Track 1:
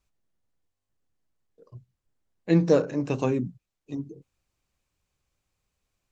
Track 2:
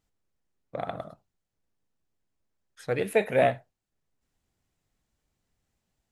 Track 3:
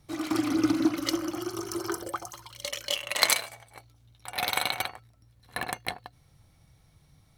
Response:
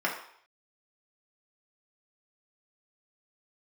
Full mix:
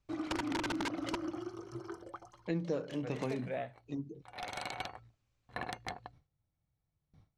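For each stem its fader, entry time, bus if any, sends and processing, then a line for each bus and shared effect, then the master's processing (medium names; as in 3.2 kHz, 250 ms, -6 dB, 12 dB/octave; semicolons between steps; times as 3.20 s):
-4.0 dB, 0.00 s, no send, none
-12.5 dB, 0.15 s, no send, none
-2.0 dB, 0.00 s, no send, gate with hold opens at -48 dBFS; treble shelf 2 kHz -11 dB; integer overflow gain 21 dB; auto duck -9 dB, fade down 0.35 s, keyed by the first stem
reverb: none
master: low-pass 6.1 kHz 12 dB/octave; compression 3:1, threshold -35 dBFS, peak gain reduction 12.5 dB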